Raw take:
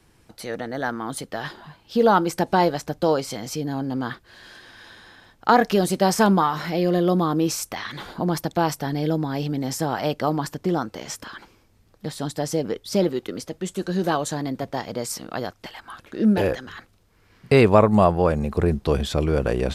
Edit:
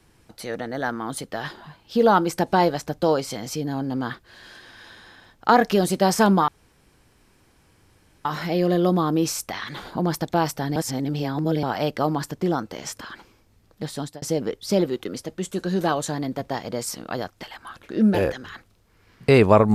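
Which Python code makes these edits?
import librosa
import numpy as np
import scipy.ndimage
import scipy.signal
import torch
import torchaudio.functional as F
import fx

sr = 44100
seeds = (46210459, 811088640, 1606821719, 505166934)

y = fx.edit(x, sr, fx.insert_room_tone(at_s=6.48, length_s=1.77),
    fx.reverse_span(start_s=8.99, length_s=0.87),
    fx.fade_out_span(start_s=12.11, length_s=0.34, curve='qsin'), tone=tone)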